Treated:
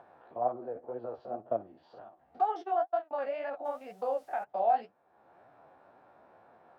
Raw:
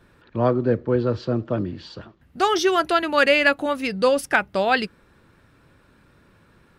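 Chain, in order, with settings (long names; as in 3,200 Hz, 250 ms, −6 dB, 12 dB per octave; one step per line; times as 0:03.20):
spectrum averaged block by block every 50 ms
0:02.62–0:03.11: noise gate −20 dBFS, range −42 dB
in parallel at +1.5 dB: upward compression, threshold −22 dBFS
on the sum: brickwall limiter −6.5 dBFS, peak gain reduction 6.5 dB
0:01.33–0:01.98: transient designer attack +7 dB, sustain −2 dB
flanger 2 Hz, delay 6.7 ms, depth 9.1 ms, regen +32%
0:03.64–0:04.43: background noise violet −27 dBFS
resonant band-pass 730 Hz, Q 8.3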